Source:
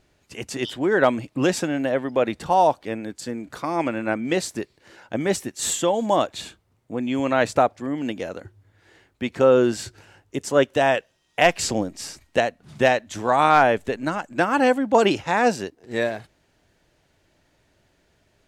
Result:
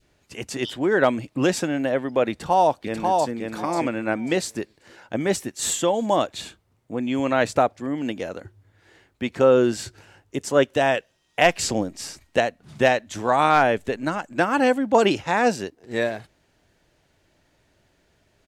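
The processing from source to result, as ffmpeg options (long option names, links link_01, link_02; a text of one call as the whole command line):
ffmpeg -i in.wav -filter_complex "[0:a]asplit=2[link_01][link_02];[link_02]afade=type=in:start_time=2.3:duration=0.01,afade=type=out:start_time=3.32:duration=0.01,aecho=0:1:540|1080|1620:0.707946|0.141589|0.0283178[link_03];[link_01][link_03]amix=inputs=2:normalize=0,adynamicequalizer=threshold=0.0398:dfrequency=950:dqfactor=1:tfrequency=950:tqfactor=1:attack=5:release=100:ratio=0.375:range=2.5:mode=cutabove:tftype=bell" out.wav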